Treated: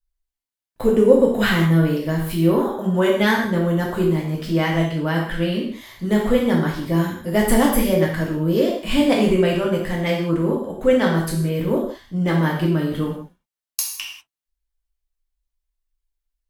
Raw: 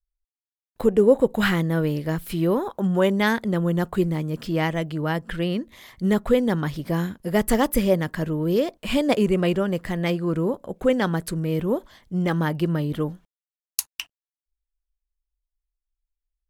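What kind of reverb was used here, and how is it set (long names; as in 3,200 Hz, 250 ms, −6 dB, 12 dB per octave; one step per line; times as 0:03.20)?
reverb whose tail is shaped and stops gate 220 ms falling, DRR −3 dB
level −1 dB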